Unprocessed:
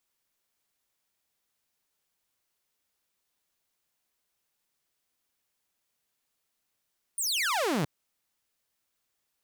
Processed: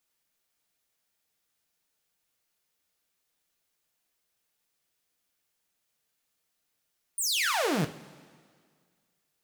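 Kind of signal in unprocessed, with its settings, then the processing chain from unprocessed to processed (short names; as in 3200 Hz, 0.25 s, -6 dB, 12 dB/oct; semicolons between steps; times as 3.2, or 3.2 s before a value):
laser zap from 9600 Hz, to 130 Hz, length 0.67 s saw, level -23 dB
notch 1000 Hz, Q 14; two-slope reverb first 0.27 s, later 1.9 s, from -18 dB, DRR 6 dB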